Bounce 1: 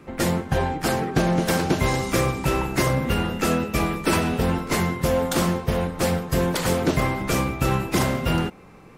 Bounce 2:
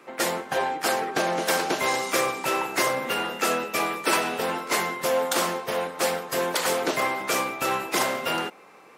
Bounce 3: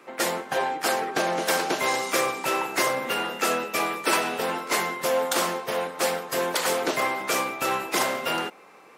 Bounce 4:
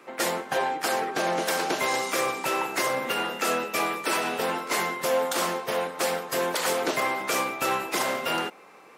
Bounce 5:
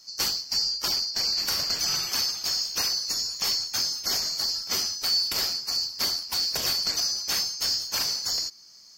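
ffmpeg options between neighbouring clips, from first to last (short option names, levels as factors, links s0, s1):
-af "highpass=500,volume=1.19"
-af "lowshelf=f=100:g=-6"
-af "alimiter=limit=0.178:level=0:latency=1:release=72"
-af "afftfilt=real='real(if(lt(b,736),b+184*(1-2*mod(floor(b/184),2)),b),0)':imag='imag(if(lt(b,736),b+184*(1-2*mod(floor(b/184),2)),b),0)':win_size=2048:overlap=0.75,adynamicequalizer=threshold=0.00501:dfrequency=7700:dqfactor=2.4:tfrequency=7700:tqfactor=2.4:attack=5:release=100:ratio=0.375:range=2:mode=cutabove:tftype=bell"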